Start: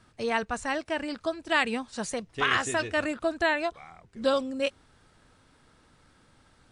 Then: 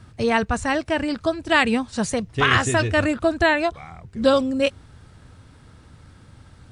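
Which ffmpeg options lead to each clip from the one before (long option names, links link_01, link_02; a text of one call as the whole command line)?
ffmpeg -i in.wav -af "equalizer=frequency=90:width=0.66:gain=14,volume=6.5dB" out.wav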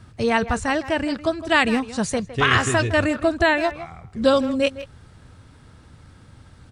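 ffmpeg -i in.wav -filter_complex "[0:a]asplit=2[link_01][link_02];[link_02]adelay=160,highpass=300,lowpass=3400,asoftclip=type=hard:threshold=-13dB,volume=-13dB[link_03];[link_01][link_03]amix=inputs=2:normalize=0" out.wav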